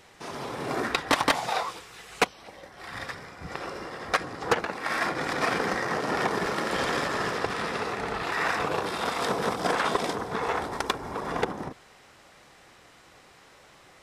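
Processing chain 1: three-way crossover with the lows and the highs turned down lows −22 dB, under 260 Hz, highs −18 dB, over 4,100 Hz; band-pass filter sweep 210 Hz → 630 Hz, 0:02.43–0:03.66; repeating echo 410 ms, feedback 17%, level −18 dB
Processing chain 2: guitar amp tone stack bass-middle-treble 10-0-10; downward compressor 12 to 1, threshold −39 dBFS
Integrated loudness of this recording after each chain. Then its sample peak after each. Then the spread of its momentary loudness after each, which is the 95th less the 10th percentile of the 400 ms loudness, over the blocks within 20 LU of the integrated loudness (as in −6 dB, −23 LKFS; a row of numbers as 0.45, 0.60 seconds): −37.0, −43.0 LKFS; −16.0, −21.5 dBFS; 17, 16 LU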